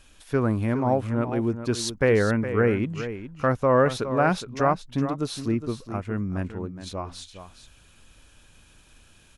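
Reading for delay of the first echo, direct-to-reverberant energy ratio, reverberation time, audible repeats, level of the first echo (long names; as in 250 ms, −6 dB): 414 ms, no reverb audible, no reverb audible, 1, −11.0 dB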